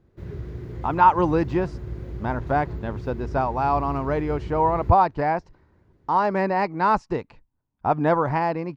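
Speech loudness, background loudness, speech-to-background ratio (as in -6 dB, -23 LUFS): -23.0 LUFS, -35.5 LUFS, 12.5 dB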